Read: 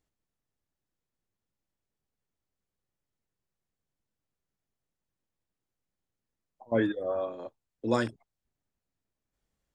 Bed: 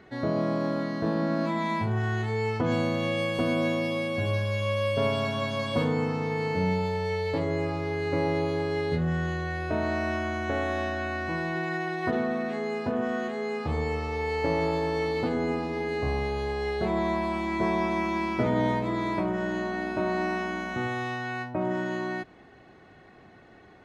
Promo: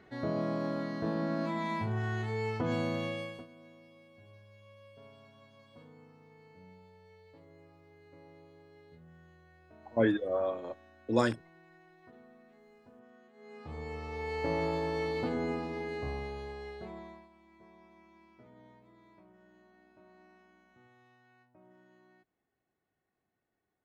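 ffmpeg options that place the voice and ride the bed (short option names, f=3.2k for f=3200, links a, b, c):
-filter_complex "[0:a]adelay=3250,volume=0dB[a];[1:a]volume=18dB,afade=t=out:st=2.97:d=0.5:silence=0.0668344,afade=t=in:st=13.33:d=1.22:silence=0.0630957,afade=t=out:st=15.45:d=1.84:silence=0.0446684[b];[a][b]amix=inputs=2:normalize=0"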